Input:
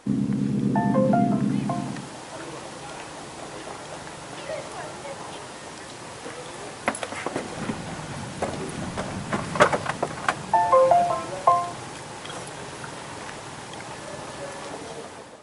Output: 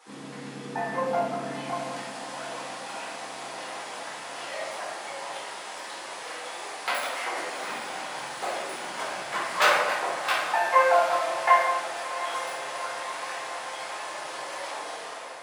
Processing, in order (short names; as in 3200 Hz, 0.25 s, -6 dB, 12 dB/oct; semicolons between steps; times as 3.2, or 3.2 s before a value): self-modulated delay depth 0.22 ms; HPF 710 Hz 12 dB/oct; diffused feedback echo 0.76 s, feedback 68%, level -12.5 dB; shoebox room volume 390 m³, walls mixed, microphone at 4.1 m; gain -8 dB